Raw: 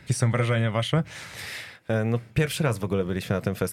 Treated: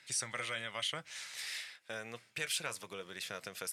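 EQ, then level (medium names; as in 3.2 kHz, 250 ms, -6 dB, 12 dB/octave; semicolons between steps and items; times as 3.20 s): distance through air 62 m; differentiator; +4.0 dB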